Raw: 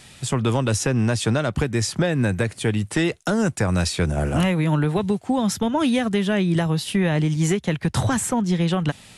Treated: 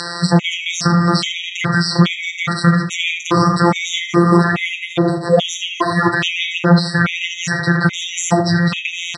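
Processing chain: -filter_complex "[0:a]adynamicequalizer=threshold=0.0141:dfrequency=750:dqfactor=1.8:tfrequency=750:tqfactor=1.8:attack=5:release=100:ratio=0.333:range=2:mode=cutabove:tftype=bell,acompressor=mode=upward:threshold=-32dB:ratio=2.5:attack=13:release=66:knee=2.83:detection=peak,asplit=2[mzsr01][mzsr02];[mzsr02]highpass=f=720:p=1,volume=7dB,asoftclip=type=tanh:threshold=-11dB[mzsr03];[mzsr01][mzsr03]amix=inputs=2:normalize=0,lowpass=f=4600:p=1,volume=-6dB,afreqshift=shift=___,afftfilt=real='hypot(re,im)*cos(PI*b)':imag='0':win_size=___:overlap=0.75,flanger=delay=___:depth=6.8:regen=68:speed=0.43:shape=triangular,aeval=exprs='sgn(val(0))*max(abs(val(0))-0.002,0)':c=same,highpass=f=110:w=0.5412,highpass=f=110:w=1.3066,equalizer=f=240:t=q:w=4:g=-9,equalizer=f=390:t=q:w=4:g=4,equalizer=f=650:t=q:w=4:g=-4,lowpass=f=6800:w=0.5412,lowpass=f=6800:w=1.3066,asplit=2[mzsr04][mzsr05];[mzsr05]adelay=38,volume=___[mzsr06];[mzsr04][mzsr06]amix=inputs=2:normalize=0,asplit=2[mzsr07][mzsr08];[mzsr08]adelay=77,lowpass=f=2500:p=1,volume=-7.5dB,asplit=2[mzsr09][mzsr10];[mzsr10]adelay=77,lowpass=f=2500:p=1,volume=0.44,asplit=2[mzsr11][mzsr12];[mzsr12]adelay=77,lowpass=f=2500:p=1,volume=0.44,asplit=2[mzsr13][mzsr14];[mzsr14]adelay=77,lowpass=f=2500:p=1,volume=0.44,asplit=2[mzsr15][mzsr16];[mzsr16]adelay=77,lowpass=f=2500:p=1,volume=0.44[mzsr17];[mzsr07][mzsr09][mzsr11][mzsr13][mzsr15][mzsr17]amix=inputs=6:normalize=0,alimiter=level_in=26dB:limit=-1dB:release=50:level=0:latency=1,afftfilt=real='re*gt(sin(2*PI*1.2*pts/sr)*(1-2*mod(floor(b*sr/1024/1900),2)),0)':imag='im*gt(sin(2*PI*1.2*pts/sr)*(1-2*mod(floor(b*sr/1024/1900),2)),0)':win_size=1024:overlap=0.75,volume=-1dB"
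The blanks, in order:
-310, 1024, 3.8, -13.5dB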